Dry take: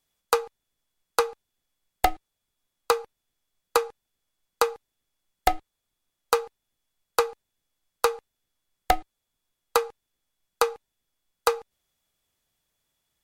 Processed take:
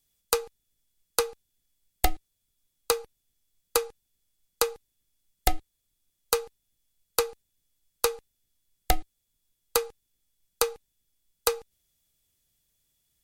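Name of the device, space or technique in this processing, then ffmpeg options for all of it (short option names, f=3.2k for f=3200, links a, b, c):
smiley-face EQ: -af "lowshelf=f=130:g=6.5,equalizer=f=1k:t=o:w=1.9:g=-8.5,highshelf=f=5.6k:g=7"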